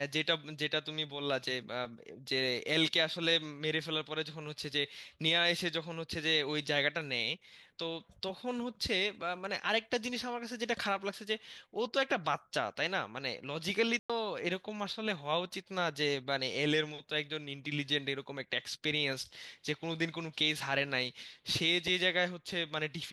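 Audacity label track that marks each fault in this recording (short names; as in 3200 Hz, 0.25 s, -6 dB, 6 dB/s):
13.990000	14.100000	gap 0.106 s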